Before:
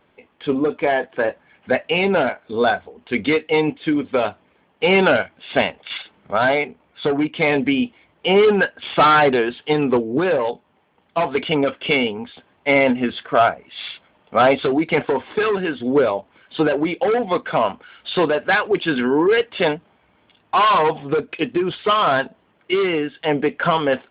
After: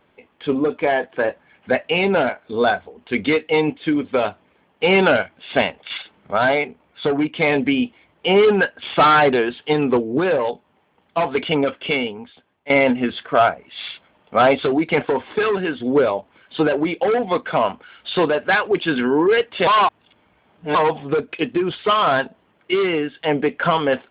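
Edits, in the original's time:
11.57–12.70 s: fade out, to -15 dB
19.67–20.75 s: reverse

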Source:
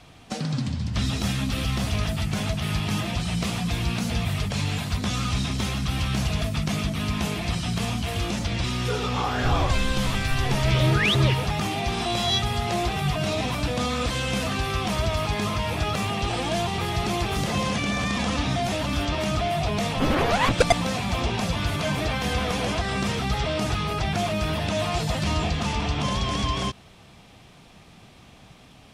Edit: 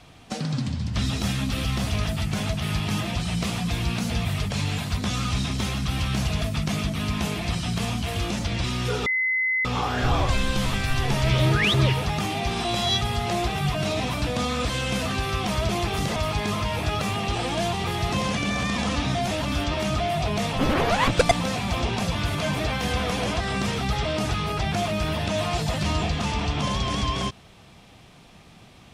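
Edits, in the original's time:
9.06 s: add tone 2.04 kHz -20.5 dBFS 0.59 s
17.07–17.54 s: move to 15.10 s

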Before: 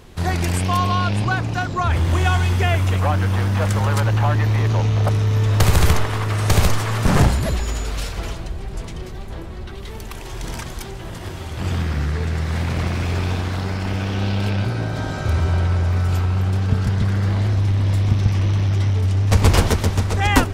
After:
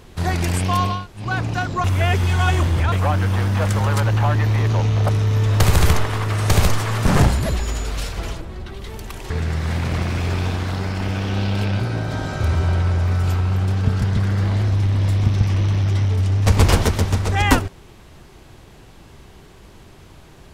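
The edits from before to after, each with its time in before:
0.96–1.26 s: room tone, crossfade 0.24 s
1.84–2.92 s: reverse
8.41–9.42 s: delete
10.31–12.15 s: delete

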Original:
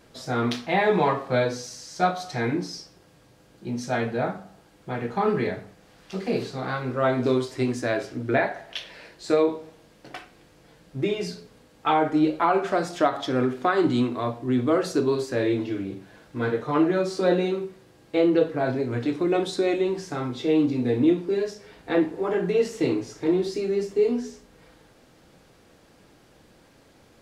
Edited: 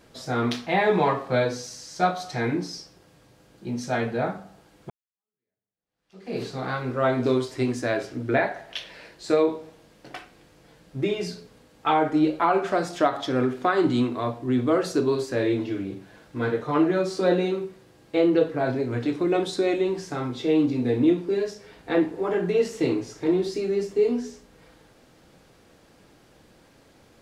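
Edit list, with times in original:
4.90–6.42 s: fade in exponential

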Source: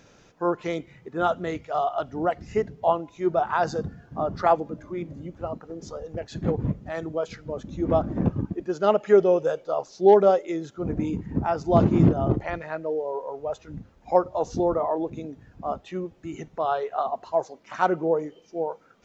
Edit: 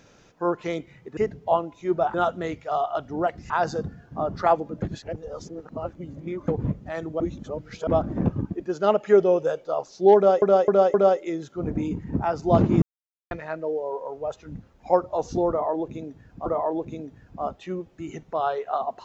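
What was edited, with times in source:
2.53–3.50 s: move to 1.17 s
4.82–6.48 s: reverse
7.20–7.87 s: reverse
10.16–10.42 s: loop, 4 plays
12.04–12.53 s: mute
14.71–15.68 s: loop, 2 plays

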